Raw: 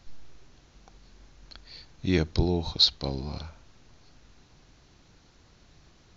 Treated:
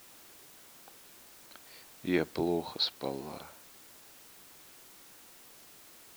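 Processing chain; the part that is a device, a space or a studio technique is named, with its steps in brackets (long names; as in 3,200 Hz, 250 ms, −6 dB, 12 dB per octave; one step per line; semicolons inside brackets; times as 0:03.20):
wax cylinder (band-pass filter 310–2,400 Hz; tape wow and flutter; white noise bed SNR 16 dB)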